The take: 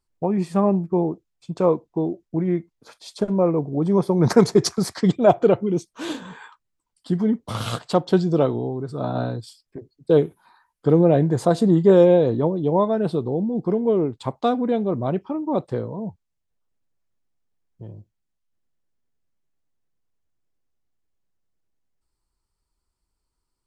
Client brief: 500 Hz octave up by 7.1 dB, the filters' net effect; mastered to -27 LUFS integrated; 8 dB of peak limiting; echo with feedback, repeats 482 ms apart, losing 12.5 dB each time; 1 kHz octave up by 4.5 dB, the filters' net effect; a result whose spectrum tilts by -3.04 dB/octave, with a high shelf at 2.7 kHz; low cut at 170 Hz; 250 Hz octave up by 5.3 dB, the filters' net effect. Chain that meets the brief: high-pass 170 Hz; peaking EQ 250 Hz +7 dB; peaking EQ 500 Hz +6 dB; peaking EQ 1 kHz +4 dB; treble shelf 2.7 kHz -9 dB; peak limiter -3.5 dBFS; feedback delay 482 ms, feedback 24%, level -12.5 dB; trim -10.5 dB

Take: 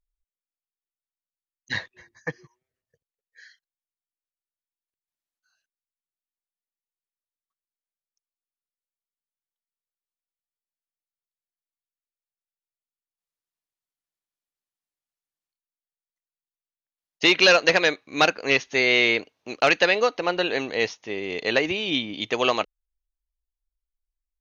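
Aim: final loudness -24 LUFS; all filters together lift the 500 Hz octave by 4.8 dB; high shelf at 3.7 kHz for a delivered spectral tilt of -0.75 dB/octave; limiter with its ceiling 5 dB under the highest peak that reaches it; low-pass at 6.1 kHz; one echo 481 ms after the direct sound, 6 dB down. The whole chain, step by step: low-pass 6.1 kHz; peaking EQ 500 Hz +5.5 dB; treble shelf 3.7 kHz +3 dB; peak limiter -7 dBFS; delay 481 ms -6 dB; trim -3.5 dB

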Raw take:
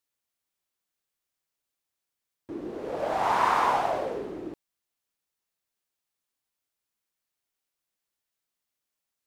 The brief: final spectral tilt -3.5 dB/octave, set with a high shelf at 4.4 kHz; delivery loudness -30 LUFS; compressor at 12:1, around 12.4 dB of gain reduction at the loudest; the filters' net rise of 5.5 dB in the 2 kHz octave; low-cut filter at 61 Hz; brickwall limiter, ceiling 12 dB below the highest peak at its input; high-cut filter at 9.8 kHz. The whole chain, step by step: high-pass 61 Hz; low-pass 9.8 kHz; peaking EQ 2 kHz +6.5 dB; treble shelf 4.4 kHz +3.5 dB; compression 12:1, threshold -30 dBFS; trim +12.5 dB; peak limiter -21.5 dBFS

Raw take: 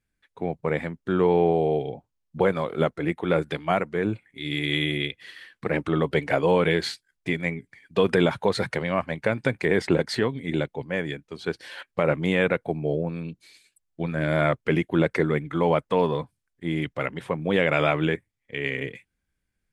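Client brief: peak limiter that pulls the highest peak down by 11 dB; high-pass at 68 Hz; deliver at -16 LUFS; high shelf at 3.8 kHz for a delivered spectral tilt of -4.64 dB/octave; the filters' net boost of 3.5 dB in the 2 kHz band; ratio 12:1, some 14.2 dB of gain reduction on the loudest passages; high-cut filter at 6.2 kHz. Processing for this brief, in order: high-pass 68 Hz; low-pass 6.2 kHz; peaking EQ 2 kHz +6 dB; treble shelf 3.8 kHz -7.5 dB; compression 12:1, threshold -30 dBFS; trim +23 dB; peak limiter -3.5 dBFS

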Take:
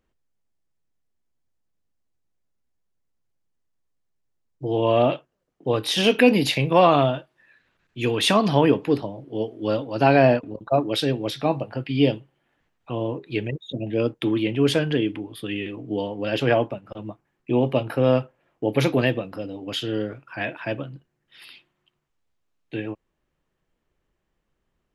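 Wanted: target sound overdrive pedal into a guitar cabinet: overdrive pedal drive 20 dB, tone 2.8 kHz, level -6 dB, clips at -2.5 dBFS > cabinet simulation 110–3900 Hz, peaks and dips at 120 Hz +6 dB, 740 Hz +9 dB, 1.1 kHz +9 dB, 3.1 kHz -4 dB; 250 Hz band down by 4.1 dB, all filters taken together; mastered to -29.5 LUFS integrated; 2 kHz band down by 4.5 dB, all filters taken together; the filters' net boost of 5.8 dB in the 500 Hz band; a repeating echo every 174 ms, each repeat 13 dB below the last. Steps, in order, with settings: peaking EQ 250 Hz -8 dB; peaking EQ 500 Hz +6 dB; peaking EQ 2 kHz -6.5 dB; feedback delay 174 ms, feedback 22%, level -13 dB; overdrive pedal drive 20 dB, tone 2.8 kHz, level -6 dB, clips at -2.5 dBFS; cabinet simulation 110–3900 Hz, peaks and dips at 120 Hz +6 dB, 740 Hz +9 dB, 1.1 kHz +9 dB, 3.1 kHz -4 dB; trim -17 dB

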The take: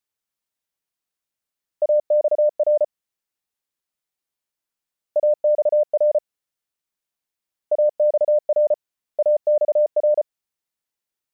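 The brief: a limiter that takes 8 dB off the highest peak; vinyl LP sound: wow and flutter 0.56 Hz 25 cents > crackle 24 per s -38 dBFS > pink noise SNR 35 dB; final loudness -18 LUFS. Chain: peak limiter -21 dBFS; wow and flutter 0.56 Hz 25 cents; crackle 24 per s -38 dBFS; pink noise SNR 35 dB; trim +10.5 dB

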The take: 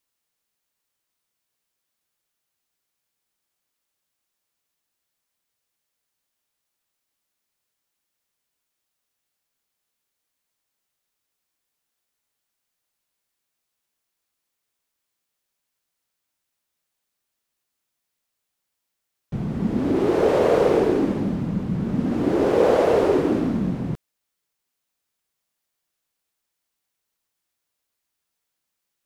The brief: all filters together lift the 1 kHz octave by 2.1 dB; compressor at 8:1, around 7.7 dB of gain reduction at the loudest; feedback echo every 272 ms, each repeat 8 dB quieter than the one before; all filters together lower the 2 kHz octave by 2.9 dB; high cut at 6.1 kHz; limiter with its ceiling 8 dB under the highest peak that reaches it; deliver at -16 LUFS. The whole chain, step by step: low-pass 6.1 kHz; peaking EQ 1 kHz +4 dB; peaking EQ 2 kHz -5.5 dB; compression 8:1, threshold -21 dBFS; peak limiter -21.5 dBFS; feedback delay 272 ms, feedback 40%, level -8 dB; trim +13 dB

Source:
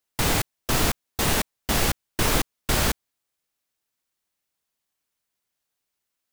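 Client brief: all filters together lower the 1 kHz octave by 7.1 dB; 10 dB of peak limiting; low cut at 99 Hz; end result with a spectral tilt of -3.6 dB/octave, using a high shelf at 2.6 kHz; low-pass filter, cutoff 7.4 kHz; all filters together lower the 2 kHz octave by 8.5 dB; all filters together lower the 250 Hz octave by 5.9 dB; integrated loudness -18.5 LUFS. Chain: high-pass 99 Hz; low-pass 7.4 kHz; peaking EQ 250 Hz -7.5 dB; peaking EQ 1 kHz -6.5 dB; peaking EQ 2 kHz -6.5 dB; treble shelf 2.6 kHz -5 dB; trim +19 dB; peak limiter -7 dBFS

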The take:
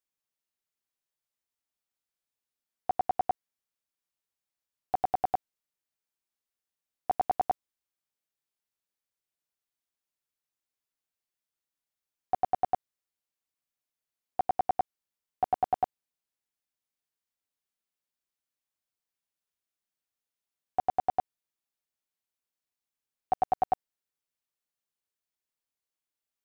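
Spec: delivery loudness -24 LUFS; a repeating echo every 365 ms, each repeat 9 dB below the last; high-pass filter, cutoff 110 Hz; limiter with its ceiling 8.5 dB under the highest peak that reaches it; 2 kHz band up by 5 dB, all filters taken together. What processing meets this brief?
high-pass 110 Hz; peaking EQ 2 kHz +6.5 dB; peak limiter -25 dBFS; feedback delay 365 ms, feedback 35%, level -9 dB; trim +16 dB

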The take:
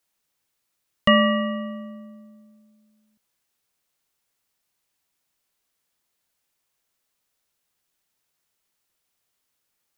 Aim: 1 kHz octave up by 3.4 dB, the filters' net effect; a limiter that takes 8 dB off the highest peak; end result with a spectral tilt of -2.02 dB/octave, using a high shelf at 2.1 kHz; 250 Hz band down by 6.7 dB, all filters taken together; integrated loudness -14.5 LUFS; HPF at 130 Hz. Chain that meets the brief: high-pass 130 Hz; peaking EQ 250 Hz -7.5 dB; peaking EQ 1 kHz +6.5 dB; treble shelf 2.1 kHz -8 dB; trim +11.5 dB; peak limiter -1 dBFS

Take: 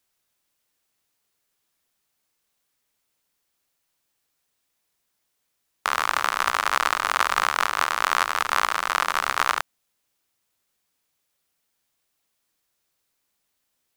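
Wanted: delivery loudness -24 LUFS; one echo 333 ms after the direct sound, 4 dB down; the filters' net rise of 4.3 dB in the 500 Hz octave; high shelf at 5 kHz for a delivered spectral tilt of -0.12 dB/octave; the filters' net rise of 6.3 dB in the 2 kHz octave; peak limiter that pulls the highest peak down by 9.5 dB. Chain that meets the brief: peaking EQ 500 Hz +5 dB; peaking EQ 2 kHz +8.5 dB; treble shelf 5 kHz -4 dB; peak limiter -8.5 dBFS; delay 333 ms -4 dB; trim -0.5 dB

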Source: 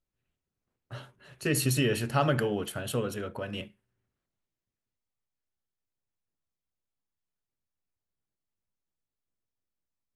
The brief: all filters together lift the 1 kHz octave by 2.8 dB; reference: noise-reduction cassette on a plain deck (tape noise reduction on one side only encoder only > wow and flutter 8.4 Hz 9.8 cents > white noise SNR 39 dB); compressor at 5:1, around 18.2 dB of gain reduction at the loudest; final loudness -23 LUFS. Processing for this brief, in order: peaking EQ 1 kHz +4 dB; compression 5:1, threshold -41 dBFS; tape noise reduction on one side only encoder only; wow and flutter 8.4 Hz 9.8 cents; white noise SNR 39 dB; trim +21 dB

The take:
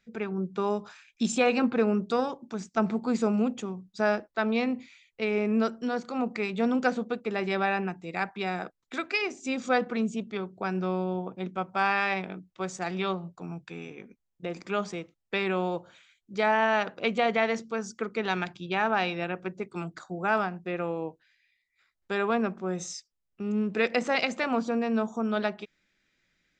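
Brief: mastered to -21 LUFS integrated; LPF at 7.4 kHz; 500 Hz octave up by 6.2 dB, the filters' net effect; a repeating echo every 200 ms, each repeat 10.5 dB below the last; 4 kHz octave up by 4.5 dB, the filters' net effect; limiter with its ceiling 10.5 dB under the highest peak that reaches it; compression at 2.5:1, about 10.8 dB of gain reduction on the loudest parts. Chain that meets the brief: low-pass 7.4 kHz; peaking EQ 500 Hz +7.5 dB; peaking EQ 4 kHz +6 dB; compression 2.5:1, threshold -30 dBFS; peak limiter -25.5 dBFS; feedback delay 200 ms, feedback 30%, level -10.5 dB; trim +15 dB

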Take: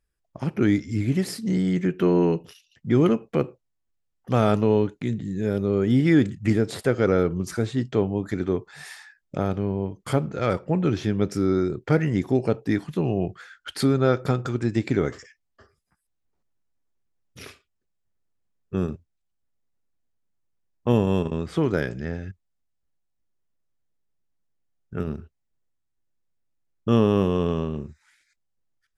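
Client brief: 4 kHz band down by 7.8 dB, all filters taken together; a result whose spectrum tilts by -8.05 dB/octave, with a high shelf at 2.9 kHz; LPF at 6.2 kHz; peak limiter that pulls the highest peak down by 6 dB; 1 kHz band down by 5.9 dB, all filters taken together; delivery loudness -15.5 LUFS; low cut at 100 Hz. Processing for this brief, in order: high-pass 100 Hz; low-pass 6.2 kHz; peaking EQ 1 kHz -7.5 dB; treble shelf 2.9 kHz -4.5 dB; peaking EQ 4 kHz -5.5 dB; trim +11 dB; peak limiter -2.5 dBFS

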